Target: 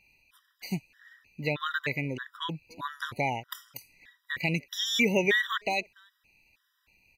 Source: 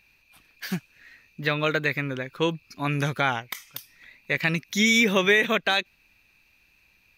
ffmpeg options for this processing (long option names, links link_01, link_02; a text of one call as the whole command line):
ffmpeg -i in.wav -filter_complex "[0:a]asplit=2[link_01][link_02];[link_02]adelay=290,highpass=300,lowpass=3400,asoftclip=type=hard:threshold=-16.5dB,volume=-28dB[link_03];[link_01][link_03]amix=inputs=2:normalize=0,afftfilt=real='re*gt(sin(2*PI*1.6*pts/sr)*(1-2*mod(floor(b*sr/1024/980),2)),0)':imag='im*gt(sin(2*PI*1.6*pts/sr)*(1-2*mod(floor(b*sr/1024/980),2)),0)':win_size=1024:overlap=0.75,volume=-2.5dB" out.wav